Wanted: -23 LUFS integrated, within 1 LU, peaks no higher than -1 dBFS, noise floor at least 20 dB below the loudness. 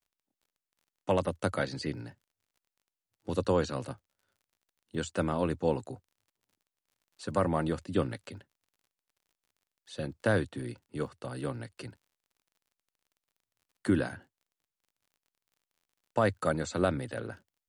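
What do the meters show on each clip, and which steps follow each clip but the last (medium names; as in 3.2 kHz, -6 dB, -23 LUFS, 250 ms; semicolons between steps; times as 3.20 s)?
tick rate 28 per s; loudness -32.5 LUFS; peak level -14.5 dBFS; loudness target -23.0 LUFS
-> de-click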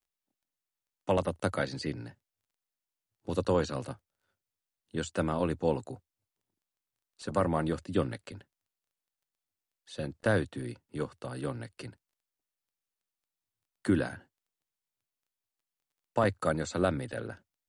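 tick rate 0 per s; loudness -32.5 LUFS; peak level -14.5 dBFS; loudness target -23.0 LUFS
-> trim +9.5 dB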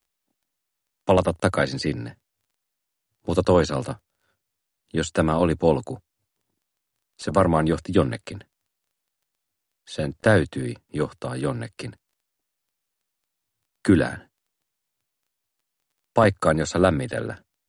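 loudness -23.0 LUFS; peak level -5.0 dBFS; noise floor -81 dBFS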